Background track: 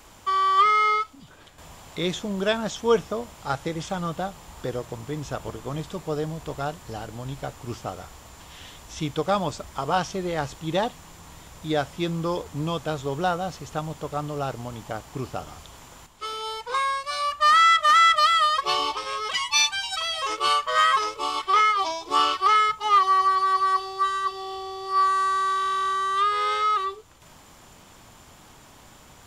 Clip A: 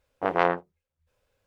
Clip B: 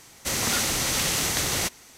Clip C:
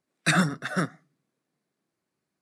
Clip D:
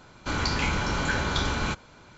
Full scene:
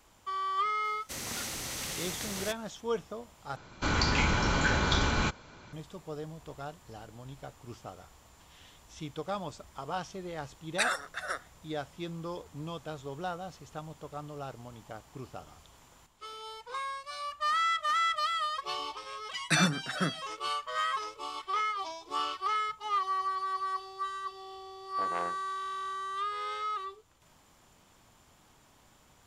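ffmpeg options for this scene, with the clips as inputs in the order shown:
ffmpeg -i bed.wav -i cue0.wav -i cue1.wav -i cue2.wav -i cue3.wav -filter_complex "[3:a]asplit=2[link_01][link_02];[0:a]volume=-12dB[link_03];[link_01]highpass=frequency=520:width=0.5412,highpass=frequency=520:width=1.3066[link_04];[link_03]asplit=2[link_05][link_06];[link_05]atrim=end=3.564[link_07];[4:a]atrim=end=2.17,asetpts=PTS-STARTPTS,volume=-0.5dB[link_08];[link_06]atrim=start=5.726[link_09];[2:a]atrim=end=1.97,asetpts=PTS-STARTPTS,volume=-12.5dB,afade=type=in:duration=0.004:curve=hsin,afade=type=out:start_time=1.966:duration=0.004:curve=hsin,adelay=840[link_10];[link_04]atrim=end=2.41,asetpts=PTS-STARTPTS,volume=-5dB,afade=type=in:duration=0.004:curve=hsin,afade=type=out:start_time=2.406:duration=0.004:curve=hsin,adelay=10520[link_11];[link_02]atrim=end=2.41,asetpts=PTS-STARTPTS,volume=-4.5dB,afade=type=in:duration=0.004:curve=hsin,afade=type=out:start_time=2.406:duration=0.004:curve=hsin,adelay=848484S[link_12];[1:a]atrim=end=1.46,asetpts=PTS-STARTPTS,volume=-15dB,afade=type=in:duration=0.004:curve=hsin,afade=type=out:start_time=1.456:duration=0.004:curve=hsin,adelay=24760[link_13];[link_07][link_08]acrossfade=duration=0.004:curve1=hsin:curve2=hsin[link_14];[link_14][link_09]acrossfade=duration=0.004:curve1=hsin:curve2=hsin[link_15];[link_15][link_10][link_11][link_12][link_13]amix=inputs=5:normalize=0" out.wav

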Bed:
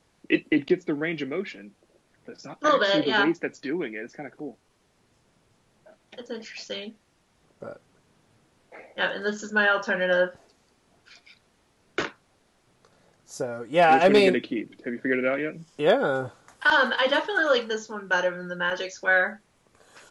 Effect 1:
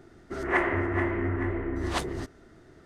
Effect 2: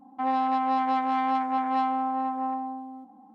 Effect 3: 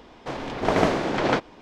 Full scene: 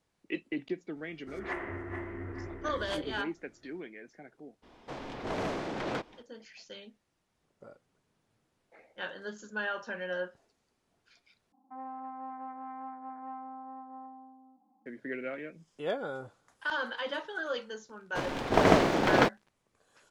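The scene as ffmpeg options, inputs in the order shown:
ffmpeg -i bed.wav -i cue0.wav -i cue1.wav -i cue2.wav -filter_complex "[3:a]asplit=2[link_01][link_02];[0:a]volume=-13dB[link_03];[link_01]asoftclip=type=tanh:threshold=-19.5dB[link_04];[2:a]lowpass=frequency=1700:width=0.5412,lowpass=frequency=1700:width=1.3066[link_05];[link_02]aeval=exprs='sgn(val(0))*max(abs(val(0))-0.00841,0)':channel_layout=same[link_06];[link_03]asplit=2[link_07][link_08];[link_07]atrim=end=11.524[link_09];[link_05]atrim=end=3.34,asetpts=PTS-STARTPTS,volume=-17dB[link_10];[link_08]atrim=start=14.856[link_11];[1:a]atrim=end=2.85,asetpts=PTS-STARTPTS,volume=-12dB,afade=type=in:duration=0.004:curve=hsin,afade=type=out:start_time=2.846:duration=0.004:curve=hsin,adelay=960[link_12];[link_04]atrim=end=1.61,asetpts=PTS-STARTPTS,volume=-9dB,afade=type=in:duration=0.02,afade=type=out:start_time=1.59:duration=0.02,adelay=4620[link_13];[link_06]atrim=end=1.61,asetpts=PTS-STARTPTS,volume=-0.5dB,afade=type=in:duration=0.004:curve=hsin,afade=type=out:start_time=1.606:duration=0.004:curve=hsin,adelay=17890[link_14];[link_09][link_10]acrossfade=duration=0.004:curve1=hsin:curve2=hsin[link_15];[link_15][link_11]acrossfade=duration=0.004:curve1=hsin:curve2=hsin[link_16];[link_16][link_12][link_13][link_14]amix=inputs=4:normalize=0" out.wav

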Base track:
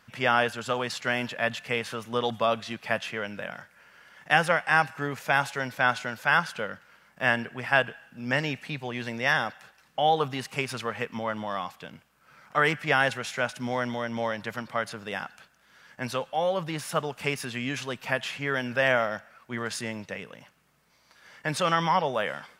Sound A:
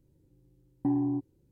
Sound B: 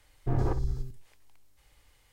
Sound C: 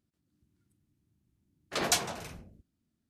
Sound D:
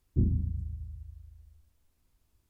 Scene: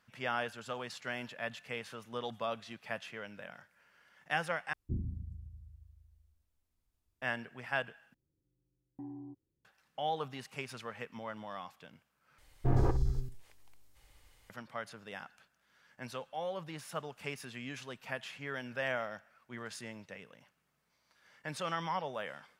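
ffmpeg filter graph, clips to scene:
ffmpeg -i bed.wav -i cue0.wav -i cue1.wav -i cue2.wav -i cue3.wav -filter_complex "[0:a]volume=-12dB,asplit=4[link_01][link_02][link_03][link_04];[link_01]atrim=end=4.734[link_05];[4:a]atrim=end=2.49,asetpts=PTS-STARTPTS,volume=-10.5dB[link_06];[link_02]atrim=start=7.216:end=8.144[link_07];[1:a]atrim=end=1.51,asetpts=PTS-STARTPTS,volume=-18dB[link_08];[link_03]atrim=start=9.646:end=12.384[link_09];[2:a]atrim=end=2.12,asetpts=PTS-STARTPTS,volume=-0.5dB[link_10];[link_04]atrim=start=14.496[link_11];[link_05][link_06]acrossfade=duration=0.004:curve1=hsin:curve2=hsin[link_12];[link_12][link_07]acrossfade=duration=0.004:curve1=hsin:curve2=hsin[link_13];[link_13][link_08]acrossfade=duration=0.004:curve1=hsin:curve2=hsin[link_14];[link_14][link_09]acrossfade=duration=0.004:curve1=hsin:curve2=hsin[link_15];[link_15][link_10]acrossfade=duration=0.004:curve1=hsin:curve2=hsin[link_16];[link_16][link_11]acrossfade=duration=0.004:curve1=hsin:curve2=hsin" out.wav

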